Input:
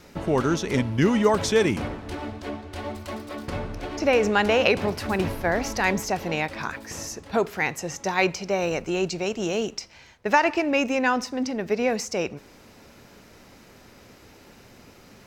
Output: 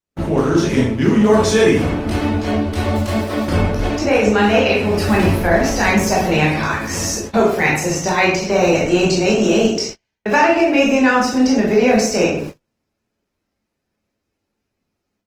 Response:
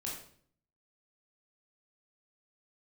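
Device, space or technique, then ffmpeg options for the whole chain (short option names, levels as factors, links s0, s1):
speakerphone in a meeting room: -filter_complex "[1:a]atrim=start_sample=2205[s0];[0:a][s0]afir=irnorm=-1:irlink=0,dynaudnorm=f=100:g=3:m=5.01,agate=range=0.01:threshold=0.0562:ratio=16:detection=peak,volume=0.891" -ar 48000 -c:a libopus -b:a 20k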